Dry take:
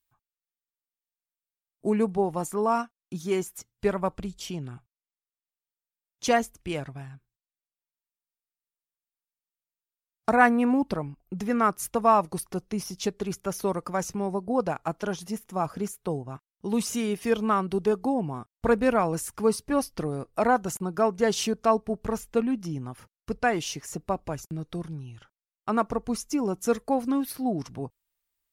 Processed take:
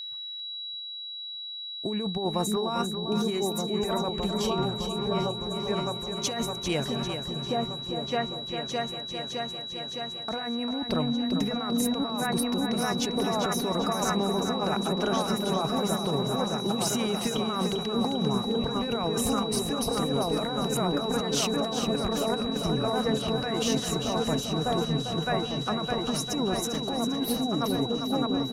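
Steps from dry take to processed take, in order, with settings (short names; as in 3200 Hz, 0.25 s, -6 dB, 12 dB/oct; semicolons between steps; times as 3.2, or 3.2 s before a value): repeats that get brighter 0.612 s, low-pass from 200 Hz, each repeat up 2 oct, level -3 dB; negative-ratio compressor -28 dBFS, ratio -1; whine 3900 Hz -35 dBFS; feedback echo 0.397 s, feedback 43%, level -8 dB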